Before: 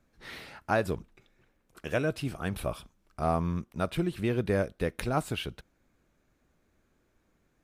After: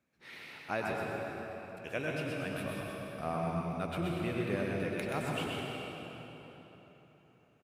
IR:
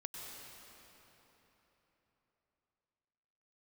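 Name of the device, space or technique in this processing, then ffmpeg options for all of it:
PA in a hall: -filter_complex "[0:a]highpass=120,equalizer=f=2.4k:t=o:w=0.57:g=7,aecho=1:1:127:0.596[a];[1:a]atrim=start_sample=2205[b];[a][b]afir=irnorm=-1:irlink=0,volume=-4dB"

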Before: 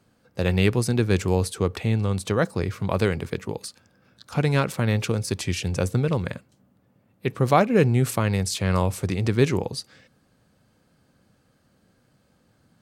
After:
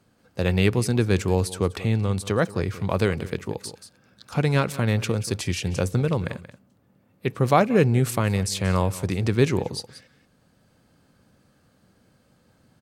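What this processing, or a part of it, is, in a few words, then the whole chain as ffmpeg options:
ducked delay: -filter_complex "[0:a]asplit=3[a][b][c];[b]adelay=181,volume=-2dB[d];[c]apad=whole_len=573021[e];[d][e]sidechaincompress=threshold=-37dB:ratio=5:attack=49:release=791[f];[a][f]amix=inputs=2:normalize=0"

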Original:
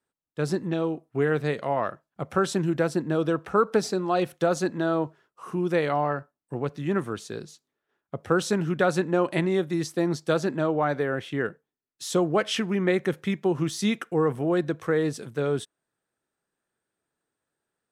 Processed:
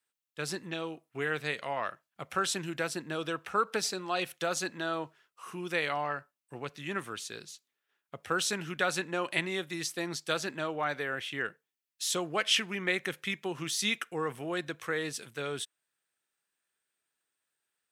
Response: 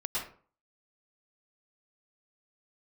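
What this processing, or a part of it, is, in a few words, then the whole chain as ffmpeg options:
presence and air boost: -af "tiltshelf=f=970:g=-7.5,equalizer=f=2.6k:t=o:w=1:g=5,highshelf=f=10k:g=4.5,volume=-6.5dB"

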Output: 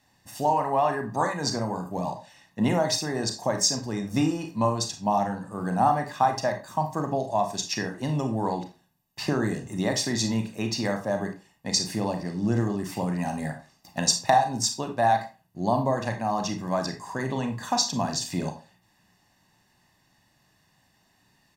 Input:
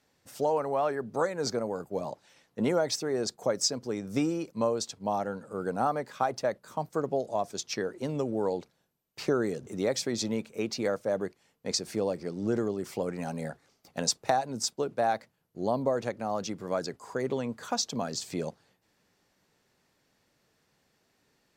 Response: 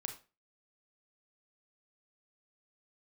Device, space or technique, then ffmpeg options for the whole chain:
microphone above a desk: -filter_complex "[0:a]aecho=1:1:1.1:0.7[a];[1:a]atrim=start_sample=2205[b];[a][b]afir=irnorm=-1:irlink=0,volume=6dB"

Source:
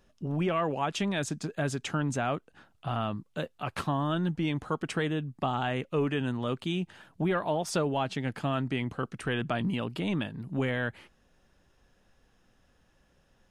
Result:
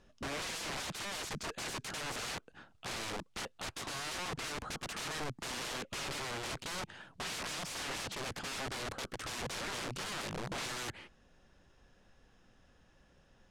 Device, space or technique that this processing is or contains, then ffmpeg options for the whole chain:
overflowing digital effects unit: -af "aeval=exprs='(mod(56.2*val(0)+1,2)-1)/56.2':c=same,lowpass=8.1k,volume=1dB"

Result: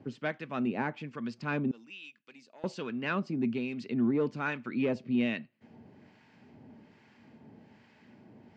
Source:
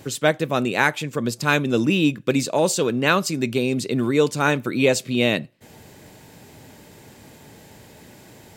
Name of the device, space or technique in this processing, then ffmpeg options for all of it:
guitar amplifier with harmonic tremolo: -filter_complex "[0:a]acrossover=split=940[a][b];[a]aeval=exprs='val(0)*(1-0.7/2+0.7/2*cos(2*PI*1.2*n/s))':c=same[c];[b]aeval=exprs='val(0)*(1-0.7/2-0.7/2*cos(2*PI*1.2*n/s))':c=same[d];[c][d]amix=inputs=2:normalize=0,asoftclip=type=tanh:threshold=-11.5dB,highpass=94,equalizer=f=230:t=q:w=4:g=10,equalizer=f=520:t=q:w=4:g=-4,equalizer=f=3.7k:t=q:w=4:g=-10,lowpass=f=4.1k:w=0.5412,lowpass=f=4.1k:w=1.3066,asettb=1/sr,asplit=3[e][f][g];[e]atrim=end=1.714[h];[f]atrim=start=1.71:end=2.64,asetpts=PTS-STARTPTS,afade=t=in:d=0.004:c=qsin,afade=t=out:st=0.926:d=0.004:c=qsin,aderivative[i];[g]atrim=start=2.636[j];[h][i]acrossfade=d=0.004:c1=hsin:c2=qsin[k];[k][j]acrossfade=d=0.004:c1=qsin:c2=hsin,volume=-8.5dB"

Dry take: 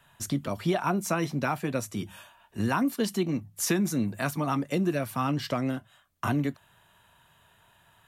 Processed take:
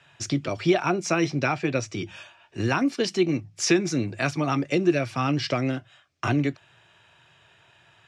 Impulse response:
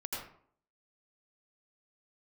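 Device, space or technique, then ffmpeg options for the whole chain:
car door speaker: -filter_complex "[0:a]highpass=100,equalizer=f=120:t=q:w=4:g=4,equalizer=f=210:t=q:w=4:g=-10,equalizer=f=350:t=q:w=4:g=5,equalizer=f=1k:t=q:w=4:g=-6,equalizer=f=2.4k:t=q:w=4:g=7,equalizer=f=5.2k:t=q:w=4:g=6,lowpass=f=6.8k:w=0.5412,lowpass=f=6.8k:w=1.3066,asettb=1/sr,asplit=3[a][b][c];[a]atrim=end=1.464[d];[b]atrim=start=1.46:end=2.16,asetpts=PTS-STARTPTS,afade=t=in:d=0.004:c=qsin,afade=t=out:st=0.696:d=0.004:c=qsin,lowpass=7.4k[e];[c]atrim=start=2.156[f];[d][e]acrossfade=d=0.004:c1=hsin:c2=qsin[g];[g][f]acrossfade=d=0.004:c1=qsin:c2=hsin,volume=4dB"

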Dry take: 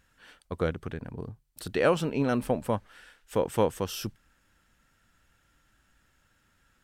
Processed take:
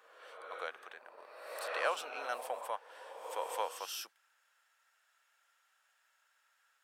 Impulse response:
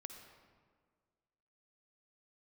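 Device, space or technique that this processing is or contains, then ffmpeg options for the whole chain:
ghost voice: -filter_complex "[0:a]areverse[a];[1:a]atrim=start_sample=2205[b];[a][b]afir=irnorm=-1:irlink=0,areverse,highpass=f=680:w=0.5412,highpass=f=680:w=1.3066,volume=1dB"

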